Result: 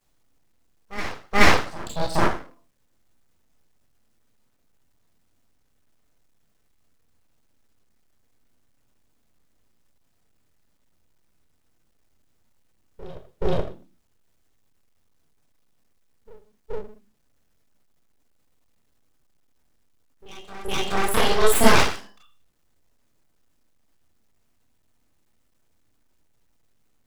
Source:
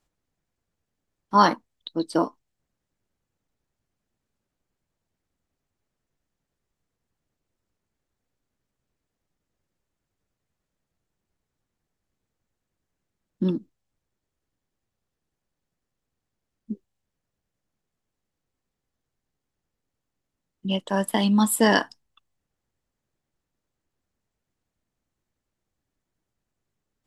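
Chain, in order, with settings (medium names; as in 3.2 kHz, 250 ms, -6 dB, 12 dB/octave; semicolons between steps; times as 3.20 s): bass shelf 190 Hz +4.5 dB; on a send: reverse echo 426 ms -16 dB; on the sum: Schroeder reverb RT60 0.4 s, combs from 25 ms, DRR -5.5 dB; word length cut 12-bit, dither none; full-wave rectifier; trim -1 dB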